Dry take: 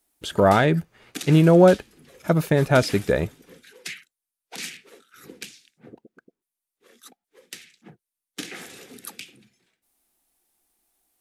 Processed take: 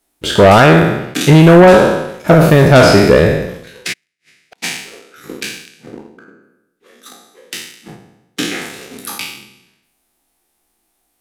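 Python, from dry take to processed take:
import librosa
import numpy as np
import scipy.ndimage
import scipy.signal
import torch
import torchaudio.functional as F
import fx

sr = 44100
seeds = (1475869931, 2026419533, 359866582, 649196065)

y = fx.spec_trails(x, sr, decay_s=0.94)
y = fx.high_shelf(y, sr, hz=5300.0, db=-6.0)
y = fx.leveller(y, sr, passes=1)
y = fx.fold_sine(y, sr, drive_db=5, ceiling_db=-1.5)
y = fx.gate_flip(y, sr, shuts_db=-24.0, range_db=-41, at=(3.92, 4.62), fade=0.02)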